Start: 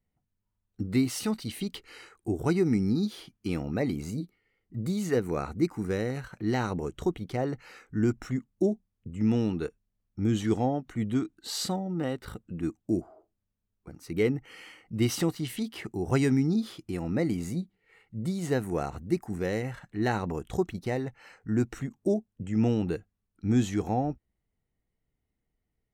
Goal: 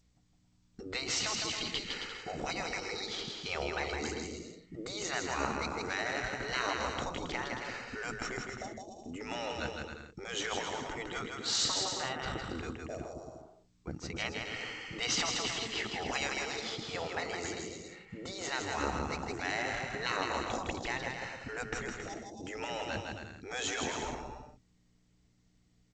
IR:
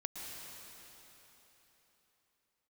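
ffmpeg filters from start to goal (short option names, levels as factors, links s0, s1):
-filter_complex "[0:a]afftfilt=real='re*lt(hypot(re,im),0.0708)':imag='im*lt(hypot(re,im),0.0708)':win_size=1024:overlap=0.75,aeval=exprs='val(0)+0.000178*(sin(2*PI*60*n/s)+sin(2*PI*2*60*n/s)/2+sin(2*PI*3*60*n/s)/3+sin(2*PI*4*60*n/s)/4+sin(2*PI*5*60*n/s)/5)':c=same,asplit=2[s0][s1];[s1]aecho=0:1:160|272|350.4|405.3|443.7:0.631|0.398|0.251|0.158|0.1[s2];[s0][s2]amix=inputs=2:normalize=0,volume=1.88" -ar 16000 -c:a g722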